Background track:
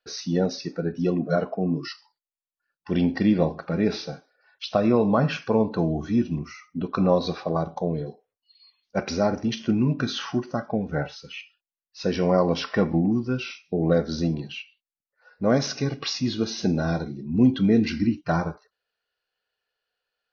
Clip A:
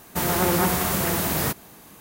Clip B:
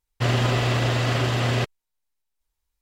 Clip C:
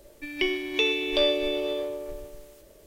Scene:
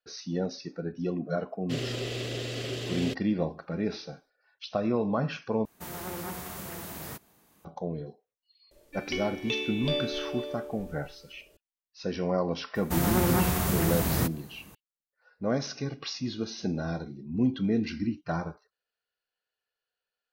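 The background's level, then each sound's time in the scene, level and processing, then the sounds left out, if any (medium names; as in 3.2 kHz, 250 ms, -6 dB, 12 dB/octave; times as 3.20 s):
background track -7.5 dB
1.49 s: add B -15 dB + FFT filter 180 Hz 0 dB, 440 Hz +11 dB, 910 Hz -9 dB, 3.2 kHz +8 dB
5.65 s: replace with A -16 dB
8.71 s: add C -7.5 dB
12.75 s: add A -6.5 dB + bass shelf 180 Hz +11.5 dB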